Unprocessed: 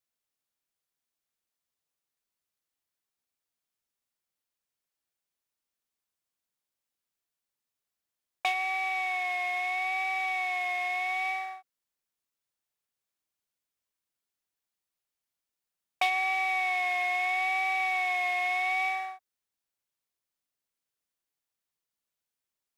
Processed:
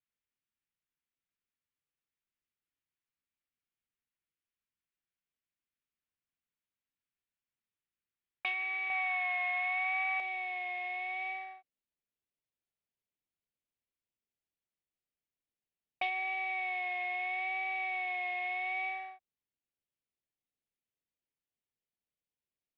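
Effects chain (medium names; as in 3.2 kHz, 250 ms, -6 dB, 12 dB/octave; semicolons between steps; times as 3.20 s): low-pass 2.9 kHz 24 dB/octave; peaking EQ 730 Hz -13.5 dB 1.6 oct, from 8.90 s 340 Hz, from 10.20 s 1.2 kHz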